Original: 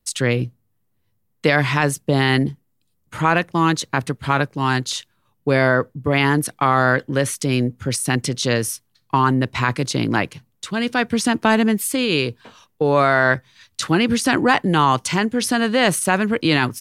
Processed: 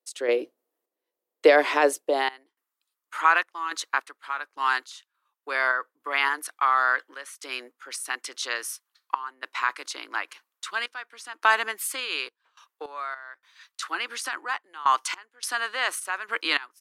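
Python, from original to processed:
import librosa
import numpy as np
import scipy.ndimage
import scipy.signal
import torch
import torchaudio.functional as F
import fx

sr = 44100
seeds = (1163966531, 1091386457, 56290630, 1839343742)

y = fx.ladder_highpass(x, sr, hz=270.0, resonance_pct=50)
y = fx.filter_sweep_highpass(y, sr, from_hz=530.0, to_hz=1200.0, start_s=2.01, end_s=2.55, q=2.1)
y = fx.tremolo_random(y, sr, seeds[0], hz=3.5, depth_pct=95)
y = y * librosa.db_to_amplitude(5.5)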